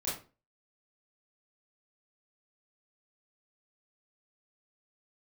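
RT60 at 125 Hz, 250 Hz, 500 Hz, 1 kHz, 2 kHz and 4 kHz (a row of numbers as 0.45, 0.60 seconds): 0.40, 0.40, 0.35, 0.30, 0.30, 0.25 seconds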